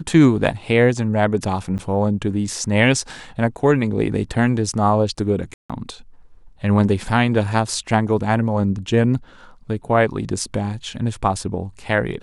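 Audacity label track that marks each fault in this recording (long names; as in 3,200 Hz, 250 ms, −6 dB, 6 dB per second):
1.780000	1.790000	drop-out 8.8 ms
5.540000	5.700000	drop-out 156 ms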